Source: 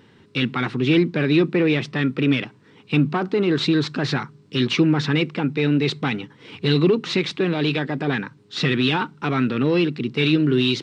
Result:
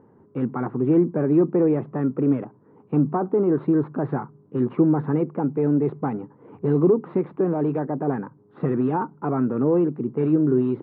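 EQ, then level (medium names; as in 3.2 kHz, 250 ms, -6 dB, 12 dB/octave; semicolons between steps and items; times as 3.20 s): low-pass 1 kHz 24 dB/octave; bass shelf 230 Hz -8 dB; +2.5 dB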